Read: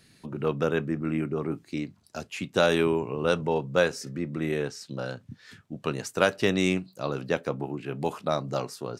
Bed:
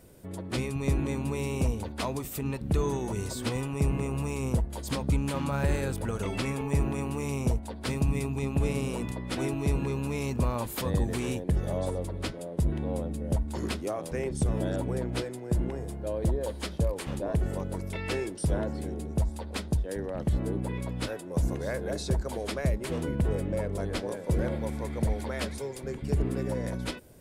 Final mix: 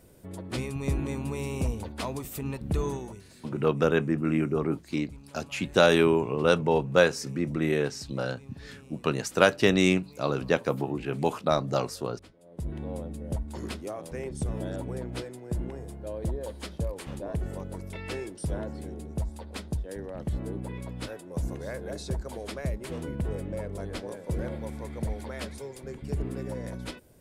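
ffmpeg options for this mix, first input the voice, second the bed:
-filter_complex "[0:a]adelay=3200,volume=1.33[s0];[1:a]volume=5.62,afade=t=out:st=2.88:d=0.34:silence=0.112202,afade=t=in:st=12.41:d=0.4:silence=0.149624[s1];[s0][s1]amix=inputs=2:normalize=0"

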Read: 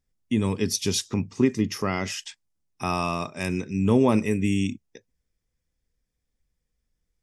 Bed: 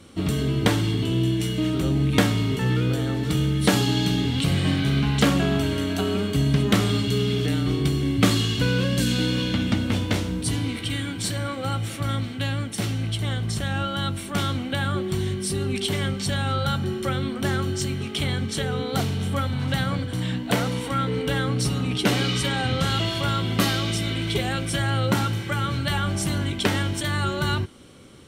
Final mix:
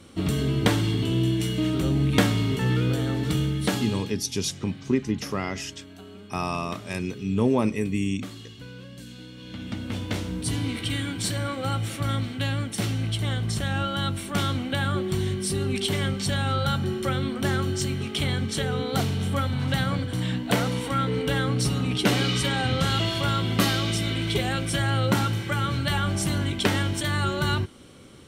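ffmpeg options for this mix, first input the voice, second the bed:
-filter_complex "[0:a]adelay=3500,volume=0.75[s0];[1:a]volume=8.41,afade=t=out:st=3.27:d=0.89:silence=0.112202,afade=t=in:st=9.37:d=1.44:silence=0.105925[s1];[s0][s1]amix=inputs=2:normalize=0"

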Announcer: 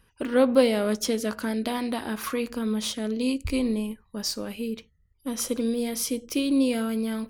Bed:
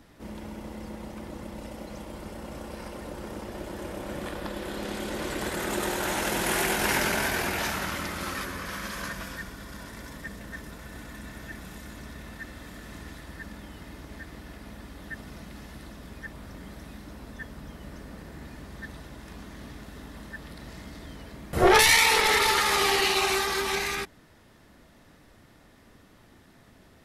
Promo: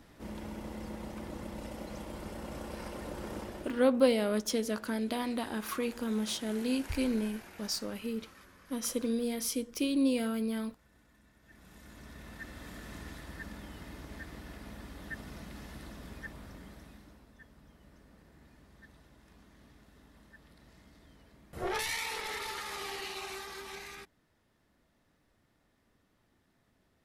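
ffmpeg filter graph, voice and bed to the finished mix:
-filter_complex "[0:a]adelay=3450,volume=0.531[s0];[1:a]volume=7.5,afade=t=out:st=3.39:d=0.48:silence=0.0944061,afade=t=in:st=11.42:d=1.28:silence=0.1,afade=t=out:st=16.09:d=1.18:silence=0.211349[s1];[s0][s1]amix=inputs=2:normalize=0"

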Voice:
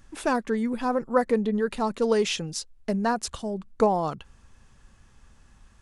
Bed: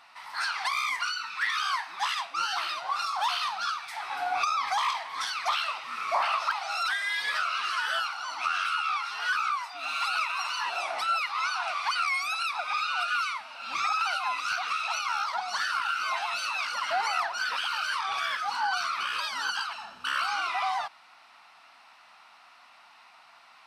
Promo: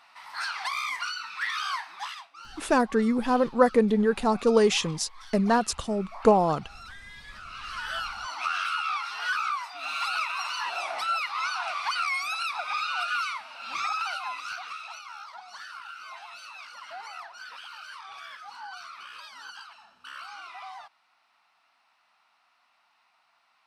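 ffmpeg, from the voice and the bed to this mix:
-filter_complex "[0:a]adelay=2450,volume=1.33[s0];[1:a]volume=5.31,afade=t=out:st=1.77:d=0.53:silence=0.177828,afade=t=in:st=7.4:d=0.86:silence=0.149624,afade=t=out:st=13.6:d=1.44:silence=0.237137[s1];[s0][s1]amix=inputs=2:normalize=0"

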